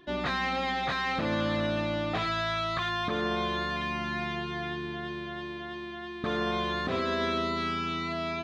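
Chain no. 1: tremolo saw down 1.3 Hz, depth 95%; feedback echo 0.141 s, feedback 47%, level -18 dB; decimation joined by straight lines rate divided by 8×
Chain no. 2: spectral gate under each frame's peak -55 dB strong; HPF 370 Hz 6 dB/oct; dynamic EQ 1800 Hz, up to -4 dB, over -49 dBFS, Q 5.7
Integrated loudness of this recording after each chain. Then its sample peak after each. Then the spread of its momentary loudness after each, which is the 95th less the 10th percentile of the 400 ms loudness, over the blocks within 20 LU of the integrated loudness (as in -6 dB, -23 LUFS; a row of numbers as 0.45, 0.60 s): -36.0, -32.5 LUFS; -19.5, -20.0 dBFS; 10, 9 LU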